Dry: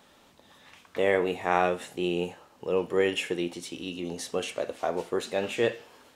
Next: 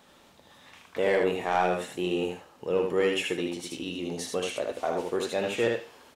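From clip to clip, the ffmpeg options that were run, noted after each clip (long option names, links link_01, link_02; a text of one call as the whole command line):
ffmpeg -i in.wav -filter_complex "[0:a]asoftclip=type=tanh:threshold=-15dB,asplit=2[link_01][link_02];[link_02]aecho=0:1:77:0.631[link_03];[link_01][link_03]amix=inputs=2:normalize=0" out.wav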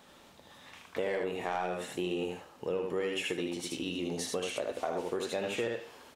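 ffmpeg -i in.wav -af "acompressor=threshold=-30dB:ratio=6" out.wav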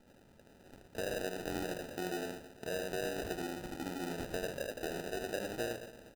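ffmpeg -i in.wav -af "aecho=1:1:119|238|357|476|595:0.282|0.138|0.0677|0.0332|0.0162,acrusher=samples=40:mix=1:aa=0.000001,volume=-5dB" out.wav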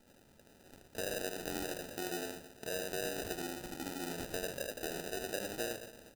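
ffmpeg -i in.wav -af "highshelf=frequency=3700:gain=8.5,bandreject=frequency=60:width_type=h:width=6,bandreject=frequency=120:width_type=h:width=6,bandreject=frequency=180:width_type=h:width=6,volume=-2dB" out.wav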